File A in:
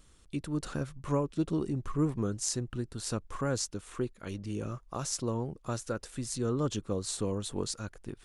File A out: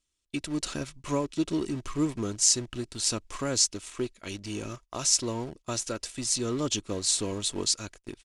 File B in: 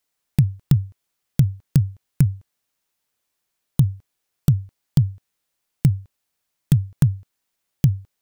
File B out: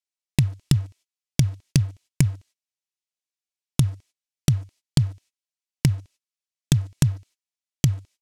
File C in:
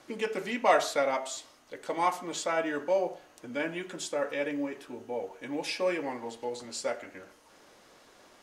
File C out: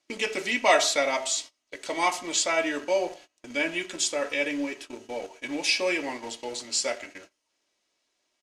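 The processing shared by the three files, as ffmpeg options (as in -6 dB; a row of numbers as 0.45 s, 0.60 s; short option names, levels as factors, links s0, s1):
-filter_complex "[0:a]lowshelf=f=130:g=-4.5,agate=range=0.0708:threshold=0.00398:ratio=16:detection=peak,aexciter=amount=2.9:drive=5.8:freq=2100,asplit=2[s0][s1];[s1]acrusher=bits=5:mix=0:aa=0.000001,volume=0.335[s2];[s0][s2]amix=inputs=2:normalize=0,lowpass=6800,aecho=1:1:3.1:0.32,volume=0.891"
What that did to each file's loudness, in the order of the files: +5.5 LU, -2.5 LU, +5.0 LU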